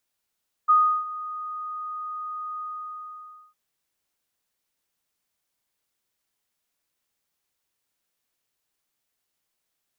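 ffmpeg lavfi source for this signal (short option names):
-f lavfi -i "aevalsrc='0.224*sin(2*PI*1240*t)':d=2.859:s=44100,afade=t=in:d=0.021,afade=t=out:st=0.021:d=0.34:silence=0.133,afade=t=out:st=1.92:d=0.939"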